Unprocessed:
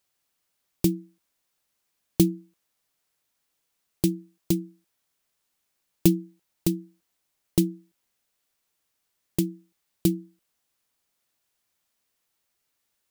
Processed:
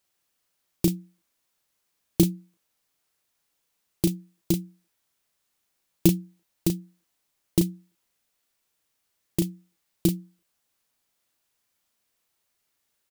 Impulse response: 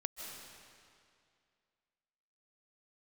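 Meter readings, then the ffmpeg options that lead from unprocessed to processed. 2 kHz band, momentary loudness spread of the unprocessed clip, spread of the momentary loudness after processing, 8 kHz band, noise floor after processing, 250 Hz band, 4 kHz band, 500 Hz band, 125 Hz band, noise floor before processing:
+1.0 dB, 13 LU, 11 LU, +1.0 dB, -77 dBFS, -0.5 dB, +1.0 dB, -0.5 dB, +1.0 dB, -78 dBFS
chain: -filter_complex "[0:a]asplit=2[a][b];[b]adelay=35,volume=-6dB[c];[a][c]amix=inputs=2:normalize=0"

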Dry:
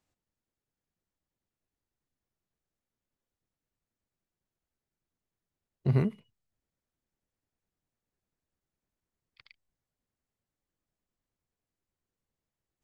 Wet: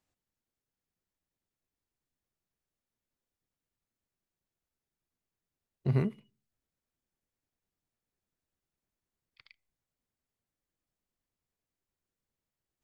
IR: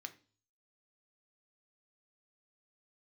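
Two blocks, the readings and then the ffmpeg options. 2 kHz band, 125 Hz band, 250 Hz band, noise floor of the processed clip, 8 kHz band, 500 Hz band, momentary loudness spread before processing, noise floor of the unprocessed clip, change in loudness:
-1.5 dB, -2.5 dB, -2.5 dB, under -85 dBFS, n/a, -2.0 dB, 7 LU, under -85 dBFS, -2.5 dB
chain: -filter_complex "[0:a]asplit=2[a][b];[1:a]atrim=start_sample=2205[c];[b][c]afir=irnorm=-1:irlink=0,volume=-10dB[d];[a][d]amix=inputs=2:normalize=0,volume=-3dB"

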